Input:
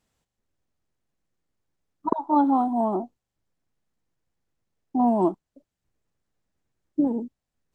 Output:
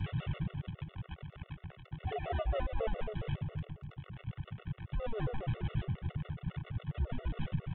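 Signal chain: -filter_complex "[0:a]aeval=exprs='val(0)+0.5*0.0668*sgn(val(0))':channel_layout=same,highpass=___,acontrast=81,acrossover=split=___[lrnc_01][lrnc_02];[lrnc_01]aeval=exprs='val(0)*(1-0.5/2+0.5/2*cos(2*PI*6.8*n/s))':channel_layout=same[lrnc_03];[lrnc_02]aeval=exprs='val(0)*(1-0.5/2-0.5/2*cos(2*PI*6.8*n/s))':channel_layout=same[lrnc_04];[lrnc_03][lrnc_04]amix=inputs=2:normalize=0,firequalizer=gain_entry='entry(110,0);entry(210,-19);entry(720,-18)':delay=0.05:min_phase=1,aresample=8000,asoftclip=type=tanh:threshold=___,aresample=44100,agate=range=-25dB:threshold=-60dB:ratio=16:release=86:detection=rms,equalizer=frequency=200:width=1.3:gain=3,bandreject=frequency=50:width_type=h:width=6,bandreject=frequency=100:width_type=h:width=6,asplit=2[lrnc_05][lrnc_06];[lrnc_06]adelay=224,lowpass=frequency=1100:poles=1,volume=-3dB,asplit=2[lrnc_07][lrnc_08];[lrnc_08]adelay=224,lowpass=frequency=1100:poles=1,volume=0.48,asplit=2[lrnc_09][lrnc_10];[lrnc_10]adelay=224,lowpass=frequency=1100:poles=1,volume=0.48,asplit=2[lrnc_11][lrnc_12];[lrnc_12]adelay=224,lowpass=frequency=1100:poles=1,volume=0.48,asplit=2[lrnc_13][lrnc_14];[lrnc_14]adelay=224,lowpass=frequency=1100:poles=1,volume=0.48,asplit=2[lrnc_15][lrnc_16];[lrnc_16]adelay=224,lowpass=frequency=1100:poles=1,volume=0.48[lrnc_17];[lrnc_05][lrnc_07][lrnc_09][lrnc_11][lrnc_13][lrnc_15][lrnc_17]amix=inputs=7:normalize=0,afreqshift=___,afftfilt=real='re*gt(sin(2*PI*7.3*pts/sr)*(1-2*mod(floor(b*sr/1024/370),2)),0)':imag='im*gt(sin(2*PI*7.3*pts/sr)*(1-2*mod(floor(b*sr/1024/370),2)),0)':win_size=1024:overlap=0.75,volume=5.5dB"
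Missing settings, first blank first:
69, 560, -35dB, -220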